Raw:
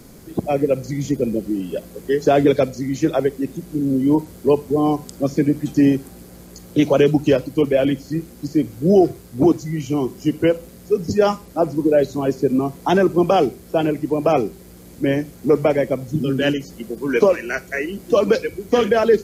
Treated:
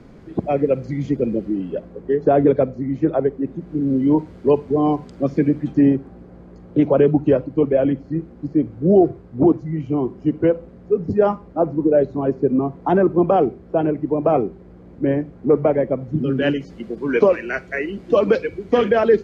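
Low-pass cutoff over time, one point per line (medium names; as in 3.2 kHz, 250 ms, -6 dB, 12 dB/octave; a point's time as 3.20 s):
1.43 s 2.4 kHz
2.03 s 1.2 kHz
3.41 s 1.2 kHz
3.96 s 2.5 kHz
5.50 s 2.5 kHz
5.99 s 1.3 kHz
15.92 s 1.3 kHz
16.62 s 2.9 kHz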